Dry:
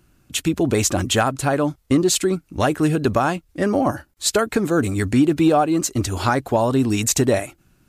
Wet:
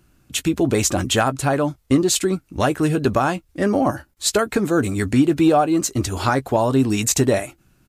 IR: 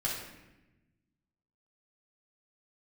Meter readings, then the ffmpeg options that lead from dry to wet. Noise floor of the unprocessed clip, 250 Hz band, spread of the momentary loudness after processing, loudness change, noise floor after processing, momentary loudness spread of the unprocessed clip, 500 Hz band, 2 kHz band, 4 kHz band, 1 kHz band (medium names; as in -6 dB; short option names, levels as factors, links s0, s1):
-60 dBFS, +0.5 dB, 6 LU, 0.0 dB, -61 dBFS, 6 LU, 0.0 dB, 0.0 dB, 0.0 dB, +0.5 dB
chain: -filter_complex "[0:a]asplit=2[s0][s1];[s1]adelay=15,volume=0.211[s2];[s0][s2]amix=inputs=2:normalize=0"